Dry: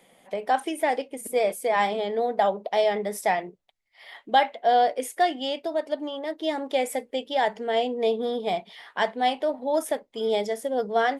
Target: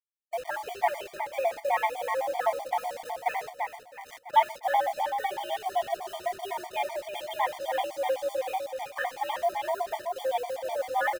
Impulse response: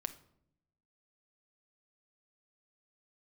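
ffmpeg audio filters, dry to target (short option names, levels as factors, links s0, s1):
-filter_complex "[0:a]highpass=f=400:t=q:w=0.5412,highpass=f=400:t=q:w=1.307,lowpass=f=3100:t=q:w=0.5176,lowpass=f=3100:t=q:w=0.7071,lowpass=f=3100:t=q:w=1.932,afreqshift=80,asplit=2[s0][s1];[s1]adelay=25,volume=0.211[s2];[s0][s2]amix=inputs=2:normalize=0,acrossover=split=610[s3][s4];[s3]asoftclip=type=tanh:threshold=0.0398[s5];[s5][s4]amix=inputs=2:normalize=0[s6];[1:a]atrim=start_sample=2205,atrim=end_sample=6174[s7];[s6][s7]afir=irnorm=-1:irlink=0,asplit=3[s8][s9][s10];[s8]afade=t=out:st=2.67:d=0.02[s11];[s9]acompressor=threshold=0.0282:ratio=5,afade=t=in:st=2.67:d=0.02,afade=t=out:st=3.14:d=0.02[s12];[s10]afade=t=in:st=3.14:d=0.02[s13];[s11][s12][s13]amix=inputs=3:normalize=0,acrusher=bits=6:mix=0:aa=0.000001,aecho=1:1:332|664|996|1328|1660|1992:0.473|0.227|0.109|0.0523|0.0251|0.0121,afftfilt=real='re*gt(sin(2*PI*7.9*pts/sr)*(1-2*mod(floor(b*sr/1024/610),2)),0)':imag='im*gt(sin(2*PI*7.9*pts/sr)*(1-2*mod(floor(b*sr/1024/610),2)),0)':win_size=1024:overlap=0.75"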